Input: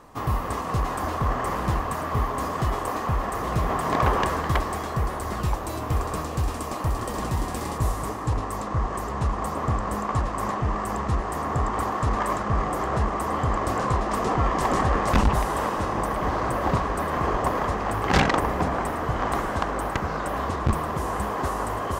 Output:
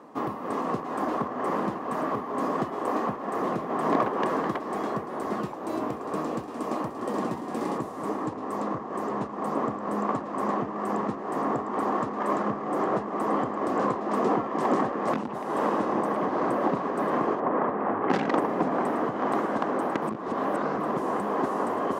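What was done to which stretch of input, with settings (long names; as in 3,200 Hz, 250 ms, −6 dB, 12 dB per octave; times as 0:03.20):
0:17.40–0:18.10: Chebyshev low-pass filter 1,700 Hz
0:20.02–0:20.80: reverse
whole clip: spectral tilt −3.5 dB per octave; downward compressor 6 to 1, threshold −15 dBFS; high-pass filter 230 Hz 24 dB per octave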